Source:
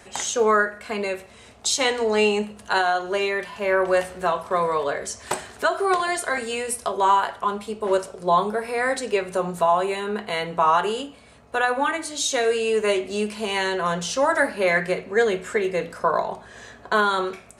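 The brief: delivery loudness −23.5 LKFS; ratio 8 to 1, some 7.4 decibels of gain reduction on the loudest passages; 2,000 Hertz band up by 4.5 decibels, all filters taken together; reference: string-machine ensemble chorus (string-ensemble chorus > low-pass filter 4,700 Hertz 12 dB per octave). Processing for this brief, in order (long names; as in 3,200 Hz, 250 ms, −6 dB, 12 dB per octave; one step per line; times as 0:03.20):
parametric band 2,000 Hz +6 dB
downward compressor 8 to 1, threshold −20 dBFS
string-ensemble chorus
low-pass filter 4,700 Hz 12 dB per octave
level +5.5 dB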